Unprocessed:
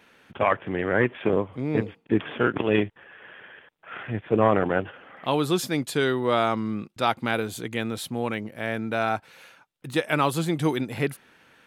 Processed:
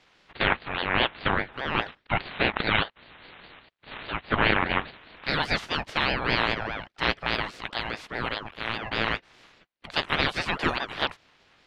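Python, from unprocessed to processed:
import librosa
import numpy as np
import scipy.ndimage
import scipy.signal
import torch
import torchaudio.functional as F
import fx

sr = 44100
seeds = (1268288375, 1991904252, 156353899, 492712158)

y = fx.spec_clip(x, sr, under_db=22)
y = fx.bandpass_edges(y, sr, low_hz=350.0, high_hz=3000.0)
y = fx.ring_lfo(y, sr, carrier_hz=770.0, swing_pct=60, hz=4.9)
y = y * librosa.db_to_amplitude(2.5)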